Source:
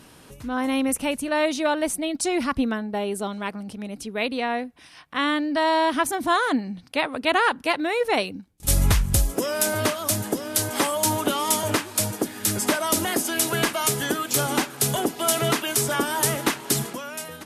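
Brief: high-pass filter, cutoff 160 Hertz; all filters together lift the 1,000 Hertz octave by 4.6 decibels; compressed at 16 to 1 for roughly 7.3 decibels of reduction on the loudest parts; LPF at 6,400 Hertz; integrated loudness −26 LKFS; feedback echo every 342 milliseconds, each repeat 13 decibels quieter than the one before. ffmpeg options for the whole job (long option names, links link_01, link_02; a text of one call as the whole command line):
ffmpeg -i in.wav -af "highpass=160,lowpass=6400,equalizer=frequency=1000:width_type=o:gain=5.5,acompressor=threshold=-20dB:ratio=16,aecho=1:1:342|684|1026:0.224|0.0493|0.0108" out.wav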